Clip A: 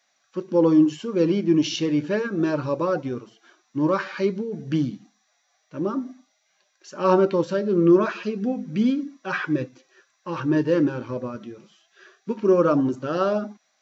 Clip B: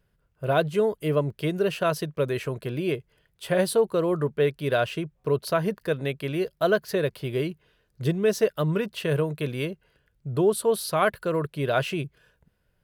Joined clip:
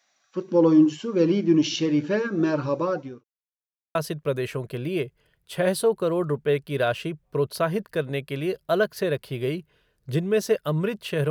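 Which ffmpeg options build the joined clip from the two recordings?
-filter_complex "[0:a]apad=whole_dur=11.3,atrim=end=11.3,asplit=2[a][b];[a]atrim=end=3.24,asetpts=PTS-STARTPTS,afade=t=out:st=2.63:d=0.61:c=qsin[c];[b]atrim=start=3.24:end=3.95,asetpts=PTS-STARTPTS,volume=0[d];[1:a]atrim=start=1.87:end=9.22,asetpts=PTS-STARTPTS,afade=t=in:d=0.004:c=hsin[e];[c][d][e]concat=n=3:v=0:a=1"

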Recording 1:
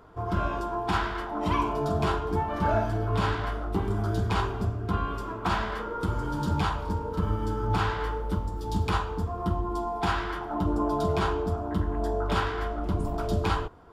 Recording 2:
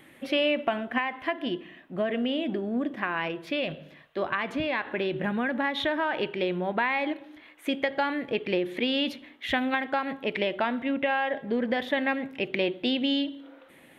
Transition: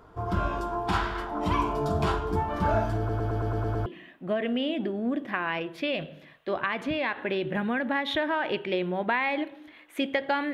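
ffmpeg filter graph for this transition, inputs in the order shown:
-filter_complex "[0:a]apad=whole_dur=10.53,atrim=end=10.53,asplit=8[a][b][c][d][e][f][g][h];[a]atrim=end=3.092[i];[b]atrim=start=2.978:end=3.092[j];[c]atrim=start=2.978:end=3.092[k];[d]atrim=start=2.978:end=3.092[l];[e]atrim=start=2.978:end=3.092[m];[f]atrim=start=2.978:end=3.092[n];[g]atrim=start=2.978:end=3.092[o];[h]atrim=start=2.978:end=3.092[p];[1:a]atrim=start=1.548:end=8.22[q];[i][j]acrossfade=d=0.004:c1=hsin:c2=hsin[r];[r][k]acrossfade=d=0.004:c1=hsin:c2=hsin[s];[s][l]acrossfade=d=0.004:c1=hsin:c2=hsin[t];[t][m]acrossfade=d=0.004:c1=hsin:c2=hsin[u];[u][n]acrossfade=d=0.004:c1=hsin:c2=hsin[v];[v][o]acrossfade=d=0.004:c1=hsin:c2=hsin[w];[w][p]acrossfade=d=0.004:c1=hsin:c2=hsin[x];[x][q]acrossfade=d=0.004:c1=hsin:c2=hsin"

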